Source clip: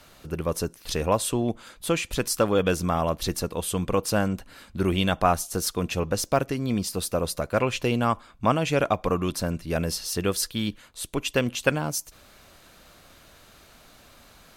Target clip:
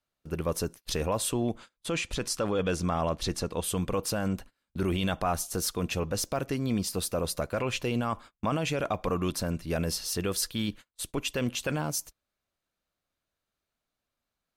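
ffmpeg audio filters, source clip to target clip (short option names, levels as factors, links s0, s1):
-filter_complex "[0:a]asettb=1/sr,asplit=3[s0][s1][s2];[s0]atrim=end=1.584[s3];[s1]atrim=start=1.58:end=3.64,asetpts=PTS-STARTPTS,afade=t=in:d=0.004:c=qsin,afade=t=out:st=2.056:d=0.004:c=qsin,lowpass=8300[s4];[s2]atrim=start=3.636[s5];[s3][s4]acrossfade=d=0.004:c1=hsin:c2=qsin[s6];[s6][s5]acrossfade=d=0.004:c1=qsin:c2=hsin,agate=range=0.0251:threshold=0.0112:ratio=16:detection=peak,alimiter=limit=0.15:level=0:latency=1:release=13,volume=0.794"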